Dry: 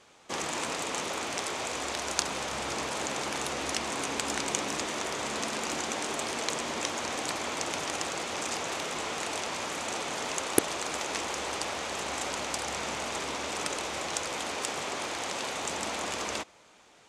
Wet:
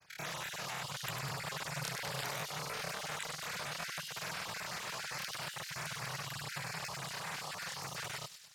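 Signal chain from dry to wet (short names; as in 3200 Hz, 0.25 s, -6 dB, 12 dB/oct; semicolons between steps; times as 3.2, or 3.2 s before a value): random spectral dropouts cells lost 30%; resonant low shelf 100 Hz +8 dB, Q 3; grains, pitch spread up and down by 0 st; air absorption 160 m; thin delay 0.198 s, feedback 64%, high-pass 2000 Hz, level -5 dB; speed mistake 7.5 ips tape played at 15 ips; gain -3.5 dB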